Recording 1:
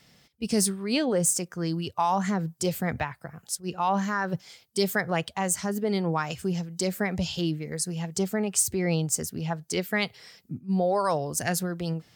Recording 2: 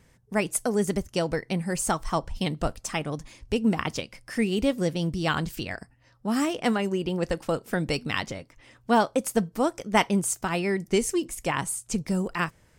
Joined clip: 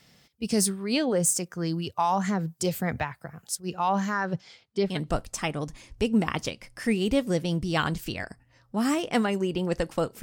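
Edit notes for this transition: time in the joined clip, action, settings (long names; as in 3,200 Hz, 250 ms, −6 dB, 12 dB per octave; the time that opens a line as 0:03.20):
recording 1
0:04.18–0:05.00: low-pass filter 9,200 Hz → 1,800 Hz
0:04.92: continue with recording 2 from 0:02.43, crossfade 0.16 s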